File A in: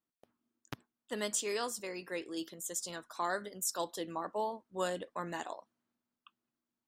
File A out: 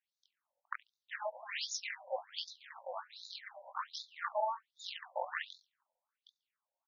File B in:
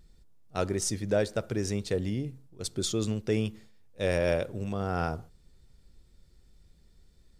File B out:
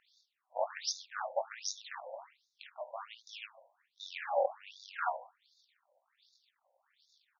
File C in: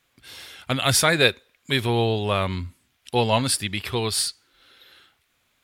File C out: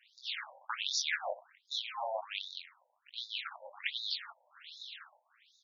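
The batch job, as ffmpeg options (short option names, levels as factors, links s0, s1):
-filter_complex "[0:a]aeval=exprs='if(lt(val(0),0),0.447*val(0),val(0))':c=same,areverse,acompressor=threshold=0.0224:ratio=16,areverse,flanger=delay=18.5:depth=3.6:speed=2.8,tremolo=f=230:d=1,asplit=2[s0][s1];[s1]adelay=70,lowpass=f=4900:p=1,volume=0.0794,asplit=2[s2][s3];[s3]adelay=70,lowpass=f=4900:p=1,volume=0.43,asplit=2[s4][s5];[s5]adelay=70,lowpass=f=4900:p=1,volume=0.43[s6];[s0][s2][s4][s6]amix=inputs=4:normalize=0,afftfilt=real='re*between(b*sr/1024,680*pow(5000/680,0.5+0.5*sin(2*PI*1.3*pts/sr))/1.41,680*pow(5000/680,0.5+0.5*sin(2*PI*1.3*pts/sr))*1.41)':imag='im*between(b*sr/1024,680*pow(5000/680,0.5+0.5*sin(2*PI*1.3*pts/sr))/1.41,680*pow(5000/680,0.5+0.5*sin(2*PI*1.3*pts/sr))*1.41)':win_size=1024:overlap=0.75,volume=7.08"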